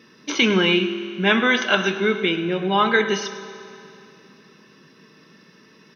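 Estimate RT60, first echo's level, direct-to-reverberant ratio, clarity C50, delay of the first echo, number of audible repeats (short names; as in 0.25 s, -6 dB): 2.8 s, -15.5 dB, 8.5 dB, 9.5 dB, 0.104 s, 1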